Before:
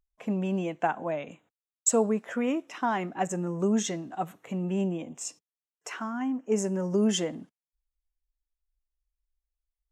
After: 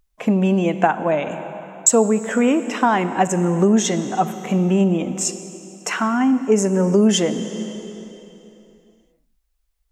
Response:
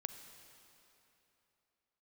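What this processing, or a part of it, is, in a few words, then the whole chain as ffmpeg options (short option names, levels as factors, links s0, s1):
ducked reverb: -filter_complex "[0:a]asplit=3[s0][s1][s2];[1:a]atrim=start_sample=2205[s3];[s1][s3]afir=irnorm=-1:irlink=0[s4];[s2]apad=whole_len=437309[s5];[s4][s5]sidechaincompress=threshold=0.0398:ratio=8:attack=22:release=669,volume=3.35[s6];[s0][s6]amix=inputs=2:normalize=0,volume=1.5"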